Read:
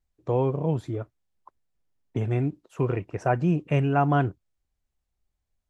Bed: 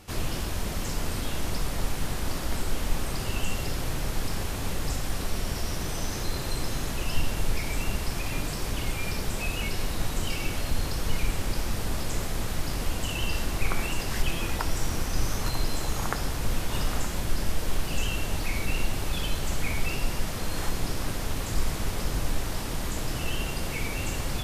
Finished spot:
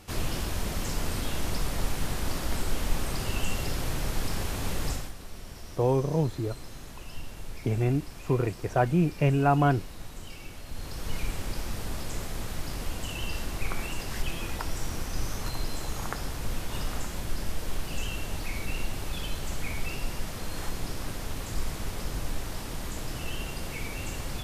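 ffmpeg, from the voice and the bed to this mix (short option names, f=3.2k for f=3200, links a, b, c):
-filter_complex "[0:a]adelay=5500,volume=-0.5dB[a];[1:a]volume=8dB,afade=t=out:st=4.88:d=0.25:silence=0.237137,afade=t=in:st=10.66:d=0.52:silence=0.375837[b];[a][b]amix=inputs=2:normalize=0"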